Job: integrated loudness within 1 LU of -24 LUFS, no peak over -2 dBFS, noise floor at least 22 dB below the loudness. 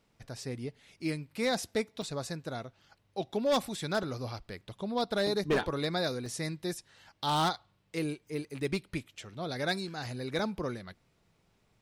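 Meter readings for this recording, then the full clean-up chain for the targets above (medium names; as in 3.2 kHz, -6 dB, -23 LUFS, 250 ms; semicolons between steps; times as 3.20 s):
clipped samples 0.5%; clipping level -22.5 dBFS; dropouts 6; longest dropout 2.0 ms; loudness -34.0 LUFS; peak level -22.5 dBFS; loudness target -24.0 LUFS
-> clip repair -22.5 dBFS; interpolate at 2.02/4.03/5.27/6.26/8.59/10.39 s, 2 ms; trim +10 dB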